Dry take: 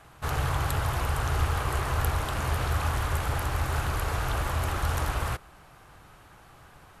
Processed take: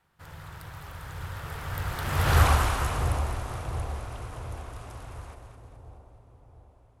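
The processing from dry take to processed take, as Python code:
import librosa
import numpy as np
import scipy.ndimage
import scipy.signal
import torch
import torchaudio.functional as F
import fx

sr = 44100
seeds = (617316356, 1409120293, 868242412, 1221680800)

y = fx.doppler_pass(x, sr, speed_mps=45, closest_m=5.8, pass_at_s=2.41)
y = fx.echo_split(y, sr, split_hz=810.0, low_ms=695, high_ms=211, feedback_pct=52, wet_db=-7.0)
y = y * librosa.db_to_amplitude(8.5)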